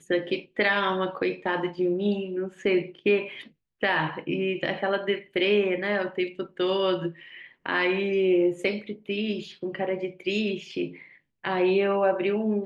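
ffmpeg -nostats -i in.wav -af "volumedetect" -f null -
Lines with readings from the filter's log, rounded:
mean_volume: -26.6 dB
max_volume: -9.1 dB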